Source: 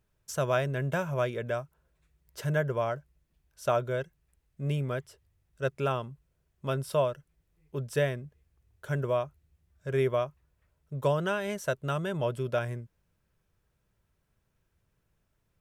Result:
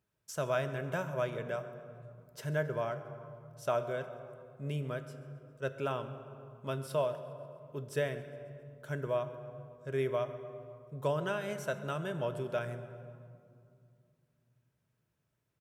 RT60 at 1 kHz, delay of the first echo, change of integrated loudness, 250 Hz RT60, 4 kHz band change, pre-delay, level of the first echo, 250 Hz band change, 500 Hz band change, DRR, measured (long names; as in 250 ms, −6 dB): 2.2 s, 135 ms, −5.5 dB, 3.2 s, −5.0 dB, 3 ms, −20.5 dB, −5.5 dB, −4.5 dB, 8.5 dB